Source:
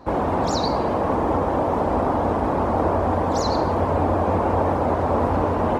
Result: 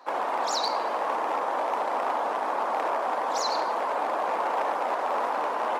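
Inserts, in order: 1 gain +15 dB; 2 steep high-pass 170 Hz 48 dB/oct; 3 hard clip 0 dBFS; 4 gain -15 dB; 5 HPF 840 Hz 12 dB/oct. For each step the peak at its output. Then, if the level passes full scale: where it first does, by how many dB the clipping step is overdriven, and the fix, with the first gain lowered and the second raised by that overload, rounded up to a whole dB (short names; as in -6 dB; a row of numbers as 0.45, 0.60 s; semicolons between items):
+6.5, +7.0, 0.0, -15.0, -15.5 dBFS; step 1, 7.0 dB; step 1 +8 dB, step 4 -8 dB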